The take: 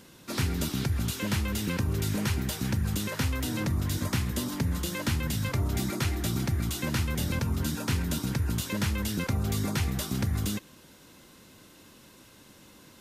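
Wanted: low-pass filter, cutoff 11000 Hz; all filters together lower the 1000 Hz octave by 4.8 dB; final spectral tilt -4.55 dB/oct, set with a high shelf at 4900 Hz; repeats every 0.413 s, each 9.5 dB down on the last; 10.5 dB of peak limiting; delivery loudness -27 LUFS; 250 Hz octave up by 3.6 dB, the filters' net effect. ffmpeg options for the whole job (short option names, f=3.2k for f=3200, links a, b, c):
-af "lowpass=11k,equalizer=f=250:t=o:g=5,equalizer=f=1k:t=o:g=-7,highshelf=f=4.9k:g=8.5,alimiter=limit=-24dB:level=0:latency=1,aecho=1:1:413|826|1239|1652:0.335|0.111|0.0365|0.012,volume=5.5dB"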